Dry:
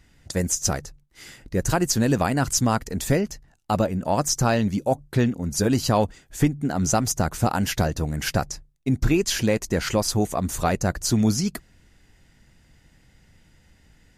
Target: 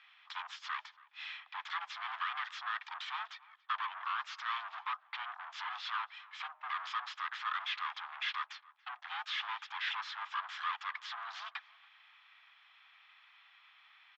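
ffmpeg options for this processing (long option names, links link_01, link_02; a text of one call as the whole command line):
ffmpeg -i in.wav -filter_complex "[0:a]alimiter=limit=-17dB:level=0:latency=1:release=118,aresample=16000,asoftclip=type=tanh:threshold=-34dB,aresample=44100,asplit=2[link_01][link_02];[link_02]asetrate=33038,aresample=44100,atempo=1.33484,volume=-4dB[link_03];[link_01][link_03]amix=inputs=2:normalize=0,highpass=frequency=460:width=0.5412,highpass=frequency=460:width=1.3066,equalizer=frequency=470:width_type=q:width=4:gain=-5,equalizer=frequency=780:width_type=q:width=4:gain=5,equalizer=frequency=1200:width_type=q:width=4:gain=4,equalizer=frequency=2900:width_type=q:width=4:gain=7,lowpass=frequency=3000:width=0.5412,lowpass=frequency=3000:width=1.3066,afreqshift=480,asplit=2[link_04][link_05];[link_05]adelay=282,lowpass=frequency=2200:poles=1,volume=-21dB,asplit=2[link_06][link_07];[link_07]adelay=282,lowpass=frequency=2200:poles=1,volume=0.37,asplit=2[link_08][link_09];[link_09]adelay=282,lowpass=frequency=2200:poles=1,volume=0.37[link_10];[link_04][link_06][link_08][link_10]amix=inputs=4:normalize=0" out.wav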